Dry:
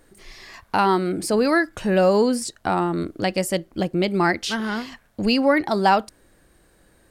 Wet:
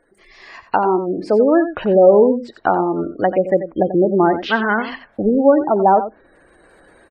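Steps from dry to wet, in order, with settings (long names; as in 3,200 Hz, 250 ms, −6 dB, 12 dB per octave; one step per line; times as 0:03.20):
treble cut that deepens with the level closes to 670 Hz, closed at −17 dBFS
gate on every frequency bin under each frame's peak −25 dB strong
bass and treble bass −13 dB, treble −11 dB
automatic gain control gain up to 13 dB
on a send: single-tap delay 89 ms −11.5 dB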